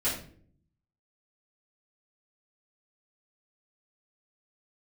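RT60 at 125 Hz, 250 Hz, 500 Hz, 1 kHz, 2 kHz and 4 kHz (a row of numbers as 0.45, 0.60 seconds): 1.0, 0.85, 0.65, 0.40, 0.40, 0.35 seconds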